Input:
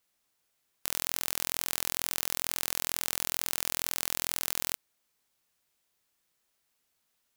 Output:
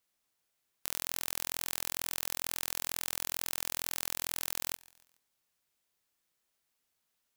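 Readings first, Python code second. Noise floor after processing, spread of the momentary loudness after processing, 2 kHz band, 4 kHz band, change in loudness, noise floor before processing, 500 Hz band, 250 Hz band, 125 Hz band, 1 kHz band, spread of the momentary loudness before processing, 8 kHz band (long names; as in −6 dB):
−81 dBFS, 2 LU, −4.0 dB, −4.0 dB, −4.0 dB, −77 dBFS, −4.5 dB, −4.5 dB, −4.0 dB, −4.0 dB, 2 LU, −4.0 dB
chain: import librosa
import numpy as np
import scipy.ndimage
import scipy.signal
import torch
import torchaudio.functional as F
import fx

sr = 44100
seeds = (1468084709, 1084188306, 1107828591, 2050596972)

y = fx.echo_feedback(x, sr, ms=141, feedback_pct=49, wet_db=-24.0)
y = F.gain(torch.from_numpy(y), -4.0).numpy()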